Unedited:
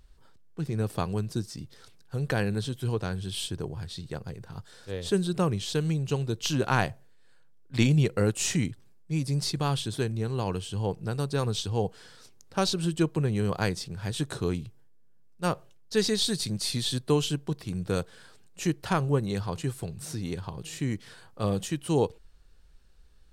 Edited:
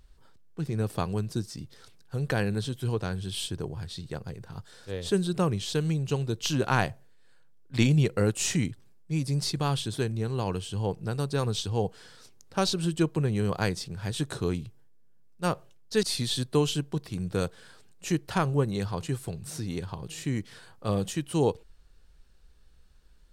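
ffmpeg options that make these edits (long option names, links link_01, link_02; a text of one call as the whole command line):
ffmpeg -i in.wav -filter_complex "[0:a]asplit=2[link_01][link_02];[link_01]atrim=end=16.032[link_03];[link_02]atrim=start=16.578[link_04];[link_03][link_04]acrossfade=duration=0.004:curve1=hsin:curve2=hsin" out.wav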